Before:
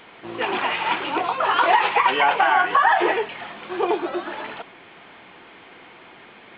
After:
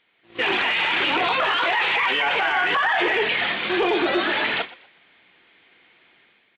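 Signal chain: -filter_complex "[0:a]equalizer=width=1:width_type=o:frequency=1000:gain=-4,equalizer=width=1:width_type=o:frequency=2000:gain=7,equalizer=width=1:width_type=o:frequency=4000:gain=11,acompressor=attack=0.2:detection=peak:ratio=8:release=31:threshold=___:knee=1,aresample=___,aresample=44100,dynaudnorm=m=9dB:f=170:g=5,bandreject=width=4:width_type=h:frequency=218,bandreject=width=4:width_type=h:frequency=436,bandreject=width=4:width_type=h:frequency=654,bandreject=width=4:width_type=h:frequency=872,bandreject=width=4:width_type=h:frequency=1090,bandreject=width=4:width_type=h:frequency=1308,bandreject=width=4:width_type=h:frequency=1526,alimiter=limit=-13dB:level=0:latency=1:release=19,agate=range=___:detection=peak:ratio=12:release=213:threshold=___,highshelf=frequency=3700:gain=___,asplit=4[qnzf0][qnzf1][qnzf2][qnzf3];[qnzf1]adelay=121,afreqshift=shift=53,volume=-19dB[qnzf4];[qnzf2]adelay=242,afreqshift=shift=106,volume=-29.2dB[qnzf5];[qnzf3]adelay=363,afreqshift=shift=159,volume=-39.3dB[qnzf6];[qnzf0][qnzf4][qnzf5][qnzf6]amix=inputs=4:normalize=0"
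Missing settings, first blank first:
-19dB, 22050, -24dB, -25dB, -4.5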